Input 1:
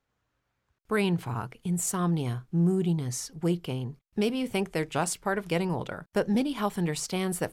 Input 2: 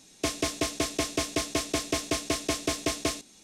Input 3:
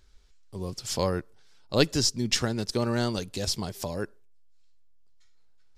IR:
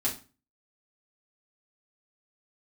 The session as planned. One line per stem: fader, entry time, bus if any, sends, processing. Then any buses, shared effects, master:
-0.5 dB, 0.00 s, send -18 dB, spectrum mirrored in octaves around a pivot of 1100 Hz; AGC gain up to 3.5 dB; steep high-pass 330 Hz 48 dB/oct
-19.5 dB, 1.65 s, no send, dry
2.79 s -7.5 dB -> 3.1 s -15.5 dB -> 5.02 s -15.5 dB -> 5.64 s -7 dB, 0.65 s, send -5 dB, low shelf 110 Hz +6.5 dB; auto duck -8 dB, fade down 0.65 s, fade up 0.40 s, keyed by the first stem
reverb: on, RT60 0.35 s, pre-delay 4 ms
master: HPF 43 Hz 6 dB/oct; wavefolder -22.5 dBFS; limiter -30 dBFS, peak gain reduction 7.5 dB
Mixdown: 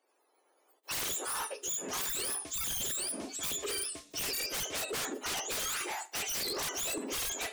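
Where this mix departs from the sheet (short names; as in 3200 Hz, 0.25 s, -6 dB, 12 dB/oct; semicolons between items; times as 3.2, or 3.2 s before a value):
stem 1 -0.5 dB -> +8.0 dB; stem 3: muted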